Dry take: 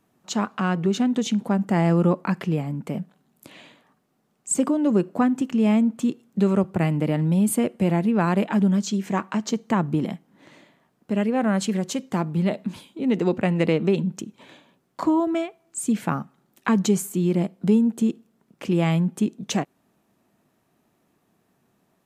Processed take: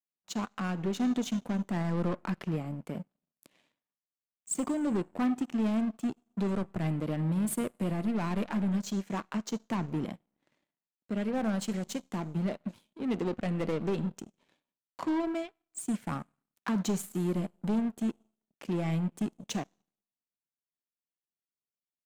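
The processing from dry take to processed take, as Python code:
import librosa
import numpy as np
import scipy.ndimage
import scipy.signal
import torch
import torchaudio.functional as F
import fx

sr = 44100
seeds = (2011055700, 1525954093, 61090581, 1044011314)

y = 10.0 ** (-22.0 / 20.0) * np.tanh(x / 10.0 ** (-22.0 / 20.0))
y = fx.rev_schroeder(y, sr, rt60_s=1.2, comb_ms=25, drr_db=18.0)
y = fx.power_curve(y, sr, exponent=2.0)
y = y * 10.0 ** (-1.0 / 20.0)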